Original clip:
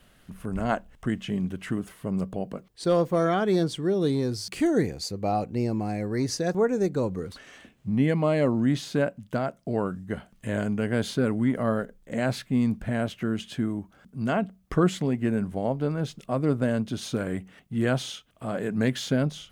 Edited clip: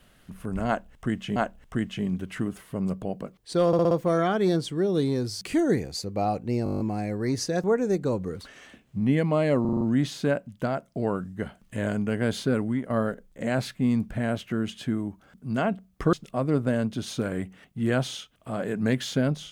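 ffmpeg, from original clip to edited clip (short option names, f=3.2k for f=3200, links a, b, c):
-filter_complex "[0:a]asplit=21[a][b][c][d][e][f][g][h][i][j][k][l][m][n][o][p][q][r][s][t][u];[a]atrim=end=1.362[v];[b]atrim=start=0.668:end=3.042[w];[c]atrim=start=2.978:end=3.042[x];[d]atrim=start=2.978:end=3.042[y];[e]atrim=start=2.978:end=3.042[z];[f]atrim=start=2.978:end=5.732[aa];[g]atrim=start=5.708:end=5.732[ab];[h]atrim=start=5.708:end=5.732[ac];[i]atrim=start=5.708:end=5.732[ad];[j]atrim=start=5.708:end=5.732[ae];[k]atrim=start=5.708:end=5.732[af];[l]atrim=start=5.708:end=5.732[ag];[m]atrim=start=5.708:end=5.732[ah];[n]atrim=start=5.708:end=8.562[ai];[o]atrim=start=8.518:end=8.562[aj];[p]atrim=start=8.518:end=8.562[ak];[q]atrim=start=8.518:end=8.562[al];[r]atrim=start=8.518:end=8.562[am];[s]atrim=start=8.518:end=11.61,asetpts=PTS-STARTPTS,afade=t=out:st=2.692:d=0.4:c=qsin:silence=0.251189[an];[t]atrim=start=11.61:end=14.842,asetpts=PTS-STARTPTS,afade=t=in:d=0.004:c=hsin:silence=0.251189[ao];[u]atrim=start=16.078[ap];[v][w]acrossfade=d=0.004:c1=hsin:c2=hsin[aq];[aq][x]acrossfade=d=0.004:c1=hsin:c2=hsin[ar];[ar][y]acrossfade=d=0.004:c1=hsin:c2=hsin[as];[as][z]acrossfade=d=0.004:c1=hsin:c2=hsin[at];[at][aa]acrossfade=d=0.004:c1=hsin:c2=hsin[au];[au][ab]acrossfade=d=0.004:c1=hsin:c2=hsin[av];[av][ac]acrossfade=d=0.004:c1=hsin:c2=hsin[aw];[aw][ad]acrossfade=d=0.004:c1=hsin:c2=hsin[ax];[ax][ae]acrossfade=d=0.004:c1=hsin:c2=hsin[ay];[ay][af]acrossfade=d=0.004:c1=hsin:c2=hsin[az];[az][ag]acrossfade=d=0.004:c1=hsin:c2=hsin[ba];[ba][ah]acrossfade=d=0.004:c1=hsin:c2=hsin[bb];[bb][ai]acrossfade=d=0.004:c1=hsin:c2=hsin[bc];[bc][aj]acrossfade=d=0.004:c1=hsin:c2=hsin[bd];[bd][ak]acrossfade=d=0.004:c1=hsin:c2=hsin[be];[be][al]acrossfade=d=0.004:c1=hsin:c2=hsin[bf];[bf][am]acrossfade=d=0.004:c1=hsin:c2=hsin[bg];[an][ao]concat=n=2:v=0:a=1[bh];[bg][bh]acrossfade=d=0.004:c1=hsin:c2=hsin[bi];[bi][ap]acrossfade=d=0.004:c1=hsin:c2=hsin"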